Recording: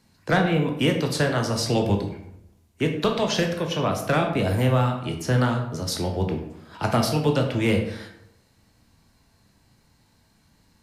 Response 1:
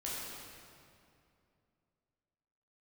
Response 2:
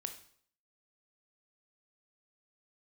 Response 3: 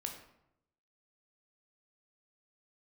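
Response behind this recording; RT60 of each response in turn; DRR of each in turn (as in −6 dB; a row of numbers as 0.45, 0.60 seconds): 3; 2.5, 0.60, 0.80 seconds; −7.5, 6.5, 2.5 decibels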